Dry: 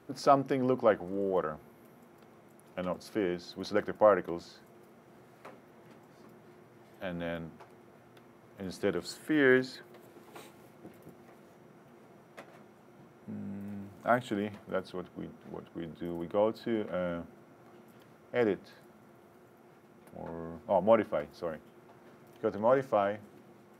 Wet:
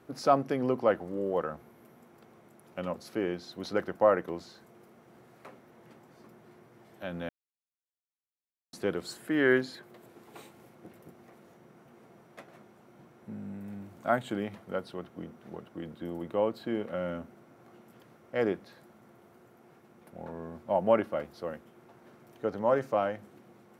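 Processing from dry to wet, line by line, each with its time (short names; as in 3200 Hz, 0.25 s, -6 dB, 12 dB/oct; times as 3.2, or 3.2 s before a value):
7.29–8.73 mute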